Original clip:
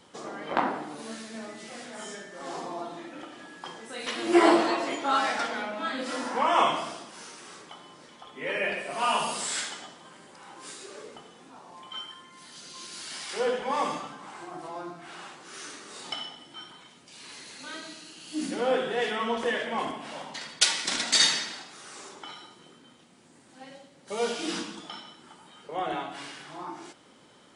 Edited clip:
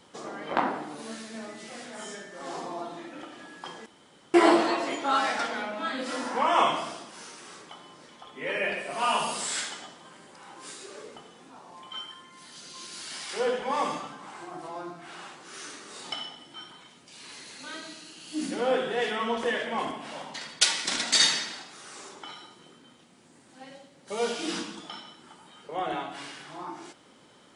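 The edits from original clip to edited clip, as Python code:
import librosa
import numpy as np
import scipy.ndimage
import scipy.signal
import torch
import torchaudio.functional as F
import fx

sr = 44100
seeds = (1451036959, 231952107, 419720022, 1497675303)

y = fx.edit(x, sr, fx.room_tone_fill(start_s=3.86, length_s=0.48), tone=tone)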